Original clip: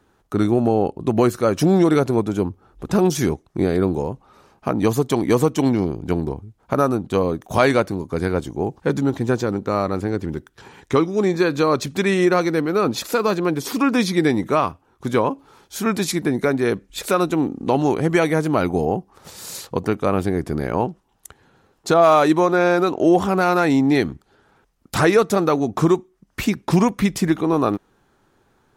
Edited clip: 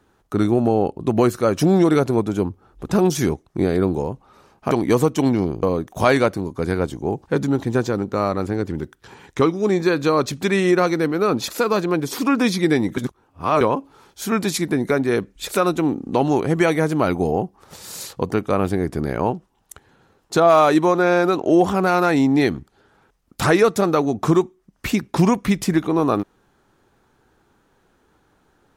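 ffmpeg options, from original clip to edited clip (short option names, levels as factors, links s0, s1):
-filter_complex "[0:a]asplit=5[s0][s1][s2][s3][s4];[s0]atrim=end=4.712[s5];[s1]atrim=start=5.108:end=6.032[s6];[s2]atrim=start=7.168:end=14.512[s7];[s3]atrim=start=14.508:end=15.152,asetpts=PTS-STARTPTS,areverse[s8];[s4]atrim=start=15.148[s9];[s5][s6]acrossfade=d=0.004:c1=hsin:c2=hsin[s10];[s10][s7]acrossfade=d=0.004:c1=hsin:c2=hsin[s11];[s11][s8]acrossfade=d=0.004:c1=hsin:c2=hsin[s12];[s12][s9]acrossfade=d=0.004:c1=hsin:c2=hsin"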